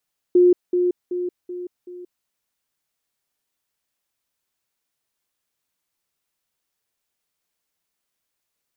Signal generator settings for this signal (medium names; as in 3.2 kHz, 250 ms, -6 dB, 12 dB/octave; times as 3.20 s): level ladder 357 Hz -10 dBFS, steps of -6 dB, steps 5, 0.18 s 0.20 s